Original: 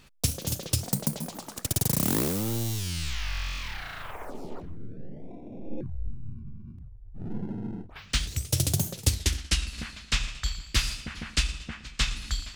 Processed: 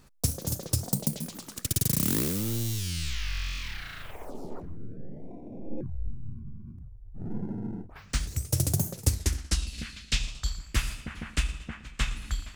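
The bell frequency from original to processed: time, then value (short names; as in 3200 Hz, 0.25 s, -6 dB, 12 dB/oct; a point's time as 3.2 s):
bell -11 dB 1.2 oct
0.82 s 2900 Hz
1.26 s 760 Hz
3.95 s 760 Hz
4.57 s 3300 Hz
9.48 s 3300 Hz
9.92 s 690 Hz
10.81 s 4700 Hz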